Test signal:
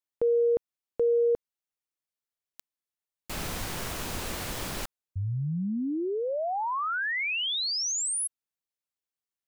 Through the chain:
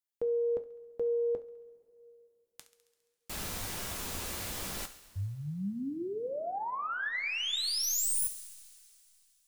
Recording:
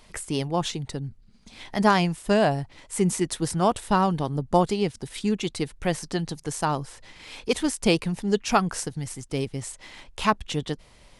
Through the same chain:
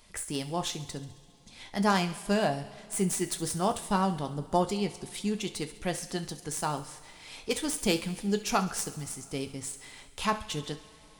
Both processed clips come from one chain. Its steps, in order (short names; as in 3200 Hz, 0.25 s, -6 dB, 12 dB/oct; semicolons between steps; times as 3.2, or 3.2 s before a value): tracing distortion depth 0.033 ms; high shelf 5100 Hz +8 dB; thinning echo 68 ms, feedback 68%, high-pass 970 Hz, level -15 dB; two-slope reverb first 0.25 s, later 3.1 s, from -21 dB, DRR 7 dB; gain -7 dB